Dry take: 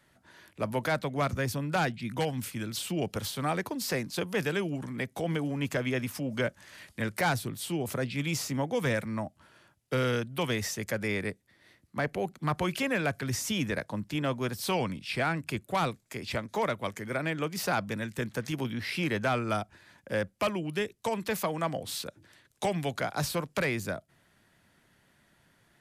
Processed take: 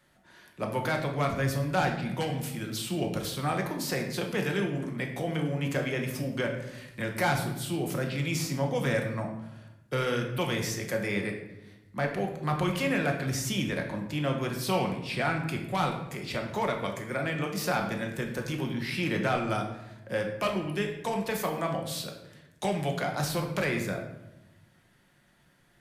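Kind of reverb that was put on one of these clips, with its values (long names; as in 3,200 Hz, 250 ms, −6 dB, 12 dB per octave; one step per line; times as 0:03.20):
rectangular room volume 330 cubic metres, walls mixed, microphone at 0.94 metres
level −1.5 dB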